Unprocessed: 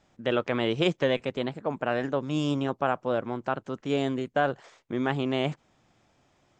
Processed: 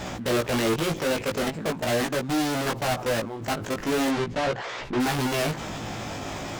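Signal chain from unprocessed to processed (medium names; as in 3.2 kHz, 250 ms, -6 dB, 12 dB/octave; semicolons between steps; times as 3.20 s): power-law waveshaper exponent 0.35; level held to a coarse grid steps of 19 dB; fuzz box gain 34 dB, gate -42 dBFS; 4.09–4.99 s: low-pass 5.7 kHz -> 3.8 kHz 12 dB/octave; chorus 0.41 Hz, delay 16 ms, depth 3 ms; trim -7.5 dB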